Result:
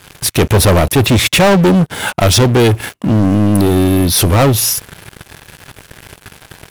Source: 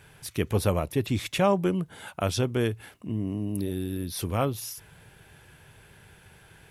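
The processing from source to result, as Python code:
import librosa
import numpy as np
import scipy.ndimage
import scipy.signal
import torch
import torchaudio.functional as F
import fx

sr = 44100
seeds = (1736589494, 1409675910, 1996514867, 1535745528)

y = fx.leveller(x, sr, passes=5)
y = y * 10.0 ** (6.0 / 20.0)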